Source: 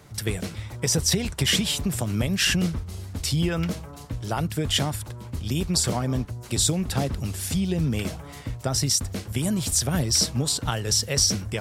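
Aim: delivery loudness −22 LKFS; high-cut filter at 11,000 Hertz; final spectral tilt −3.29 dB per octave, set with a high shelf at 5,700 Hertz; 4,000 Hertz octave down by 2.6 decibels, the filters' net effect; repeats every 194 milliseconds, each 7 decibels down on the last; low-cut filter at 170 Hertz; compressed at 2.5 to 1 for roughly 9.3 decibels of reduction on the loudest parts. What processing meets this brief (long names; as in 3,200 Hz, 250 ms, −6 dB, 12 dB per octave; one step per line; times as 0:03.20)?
high-pass filter 170 Hz
low-pass filter 11,000 Hz
parametric band 4,000 Hz −6.5 dB
high-shelf EQ 5,700 Hz +5 dB
downward compressor 2.5 to 1, threshold −32 dBFS
repeating echo 194 ms, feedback 45%, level −7 dB
level +10 dB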